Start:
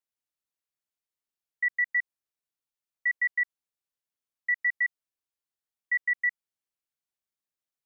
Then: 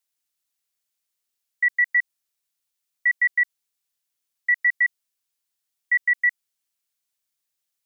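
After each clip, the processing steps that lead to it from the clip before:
high-shelf EQ 2,000 Hz +11.5 dB
level +1 dB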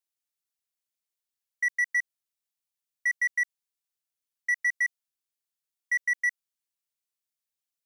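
leveller curve on the samples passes 1
level −7 dB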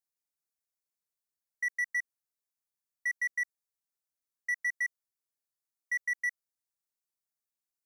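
parametric band 3,000 Hz −13.5 dB 0.54 octaves
level −3 dB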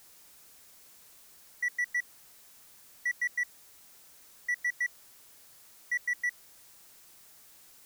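converter with a step at zero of −48 dBFS

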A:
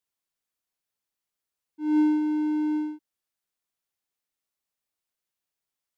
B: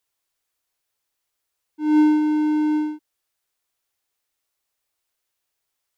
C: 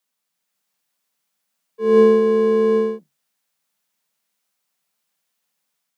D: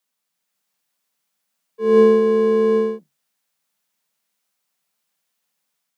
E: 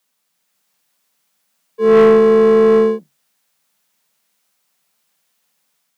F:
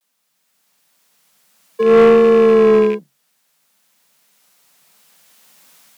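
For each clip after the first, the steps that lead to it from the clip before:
parametric band 200 Hz −13 dB 0.6 octaves; level +8.5 dB
sub-octave generator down 2 octaves, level −4 dB; automatic gain control gain up to 3.5 dB; frequency shifter +140 Hz
no processing that can be heard
soft clipping −14 dBFS, distortion −12 dB; level +8.5 dB
loose part that buzzes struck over −31 dBFS, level −19 dBFS; camcorder AGC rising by 6.4 dB per second; pitch vibrato 0.58 Hz 61 cents

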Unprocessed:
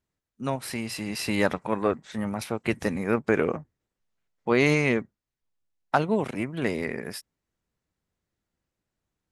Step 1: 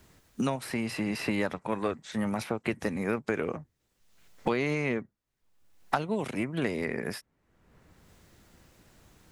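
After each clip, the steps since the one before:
multiband upward and downward compressor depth 100%
level −5 dB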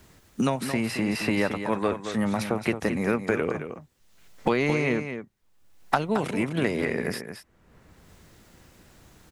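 single-tap delay 221 ms −9 dB
level +4.5 dB

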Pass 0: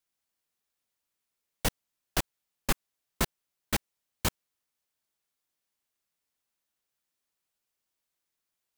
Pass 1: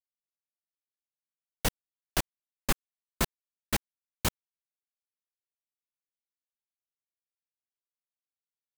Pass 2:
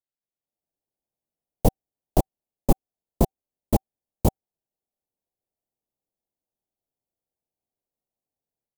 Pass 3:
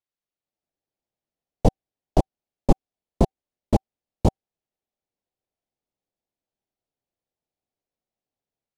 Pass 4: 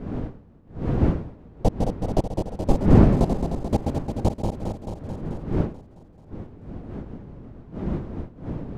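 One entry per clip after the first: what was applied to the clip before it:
bit reduction 6 bits
automatic gain control; drawn EQ curve 770 Hz 0 dB, 1,500 Hz −28 dB, 14,000 Hz −11 dB; level +2 dB
low-pass filter 5,200 Hz 12 dB per octave; level +1.5 dB
feedback delay that plays each chunk backwards 109 ms, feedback 82%, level −5 dB; wind on the microphone 240 Hz −23 dBFS; level −3 dB

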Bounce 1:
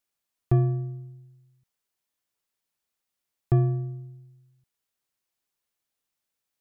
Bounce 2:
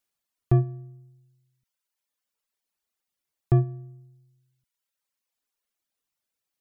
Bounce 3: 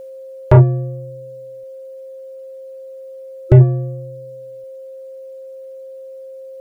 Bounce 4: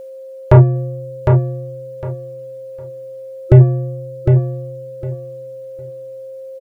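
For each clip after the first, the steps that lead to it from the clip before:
reverb reduction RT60 1.4 s; level +1.5 dB
healed spectral selection 0:03.05–0:03.58, 350–1,300 Hz before; steady tone 530 Hz −50 dBFS; sine wavefolder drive 8 dB, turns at −9 dBFS; level +6.5 dB
repeating echo 757 ms, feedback 21%, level −5 dB; level +1 dB

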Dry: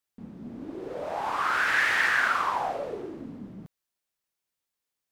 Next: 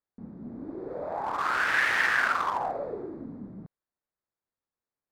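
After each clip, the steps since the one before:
adaptive Wiener filter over 15 samples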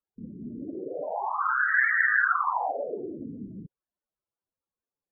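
spectral peaks only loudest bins 16
high-shelf EQ 3,800 Hz +10 dB
level +2 dB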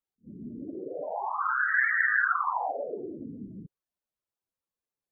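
level that may rise only so fast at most 380 dB per second
level −2 dB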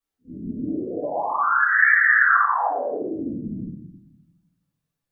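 convolution reverb RT60 0.70 s, pre-delay 3 ms, DRR −9.5 dB
level −4 dB

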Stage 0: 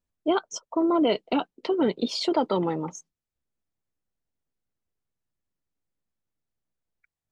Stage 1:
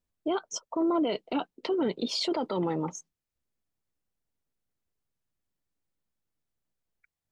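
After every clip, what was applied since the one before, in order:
brickwall limiter −20.5 dBFS, peak gain reduction 8.5 dB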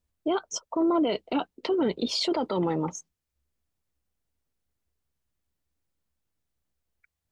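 parametric band 70 Hz +15 dB 0.34 octaves
level +2.5 dB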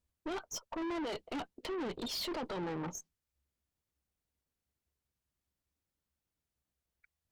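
tube saturation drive 33 dB, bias 0.4
level −2.5 dB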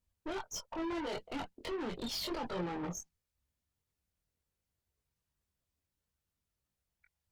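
multi-voice chorus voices 6, 0.8 Hz, delay 22 ms, depth 1.2 ms
level +3 dB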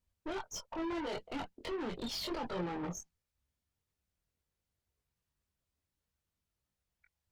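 high-shelf EQ 7,600 Hz −4.5 dB

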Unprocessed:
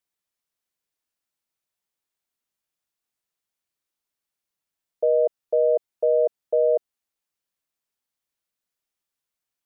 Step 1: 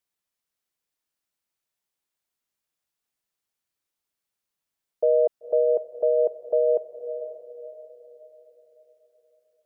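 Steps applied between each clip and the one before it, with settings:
feedback delay with all-pass diffusion 520 ms, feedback 42%, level −11 dB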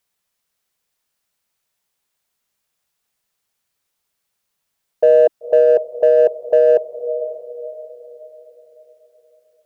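parametric band 310 Hz −8.5 dB 0.27 octaves
in parallel at −10.5 dB: hard clipping −22 dBFS, distortion −9 dB
on the sum: level +8 dB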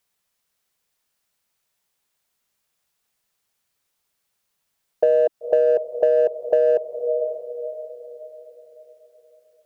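downward compressor, threshold −14 dBFS, peak gain reduction 6.5 dB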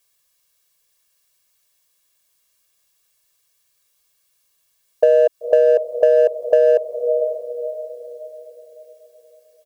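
high-shelf EQ 2,500 Hz +9 dB
comb filter 1.8 ms, depth 82%
level −1 dB

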